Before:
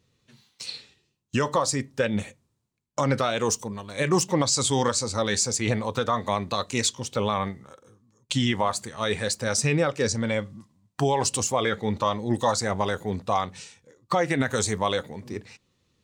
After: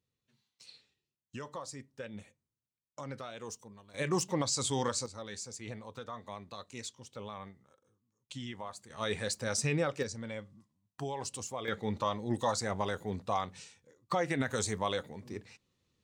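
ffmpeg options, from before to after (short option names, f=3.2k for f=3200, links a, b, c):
-af "asetnsamples=n=441:p=0,asendcmd='3.94 volume volume -9dB;5.06 volume volume -18.5dB;8.9 volume volume -8dB;10.03 volume volume -15dB;11.68 volume volume -8dB',volume=-19dB"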